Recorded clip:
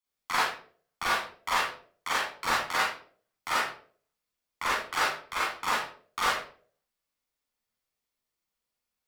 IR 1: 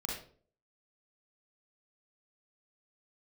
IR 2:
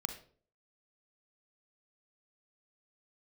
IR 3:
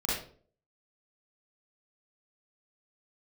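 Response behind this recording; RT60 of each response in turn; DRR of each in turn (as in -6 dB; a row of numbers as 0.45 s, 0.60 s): 3; 0.50 s, 0.50 s, 0.50 s; -3.0 dB, 7.0 dB, -7.5 dB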